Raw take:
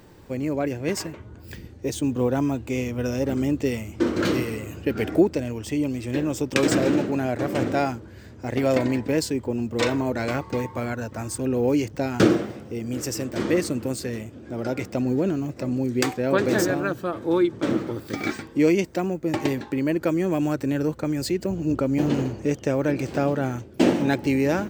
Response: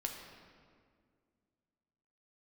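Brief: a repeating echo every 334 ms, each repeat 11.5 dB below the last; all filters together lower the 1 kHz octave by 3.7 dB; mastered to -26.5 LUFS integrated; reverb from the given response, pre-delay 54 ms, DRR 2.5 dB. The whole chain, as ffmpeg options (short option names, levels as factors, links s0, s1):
-filter_complex "[0:a]equalizer=f=1000:t=o:g=-5.5,aecho=1:1:334|668|1002:0.266|0.0718|0.0194,asplit=2[s0][s1];[1:a]atrim=start_sample=2205,adelay=54[s2];[s1][s2]afir=irnorm=-1:irlink=0,volume=0.708[s3];[s0][s3]amix=inputs=2:normalize=0,volume=0.668"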